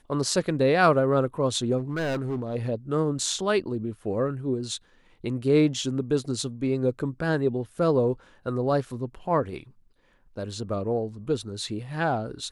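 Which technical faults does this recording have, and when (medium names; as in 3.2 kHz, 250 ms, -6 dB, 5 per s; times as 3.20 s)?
1.78–2.56 s: clipped -24.5 dBFS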